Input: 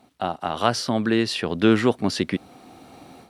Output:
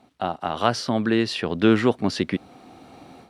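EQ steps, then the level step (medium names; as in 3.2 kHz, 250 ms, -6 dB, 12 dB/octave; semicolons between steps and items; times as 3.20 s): treble shelf 8.5 kHz -10.5 dB; 0.0 dB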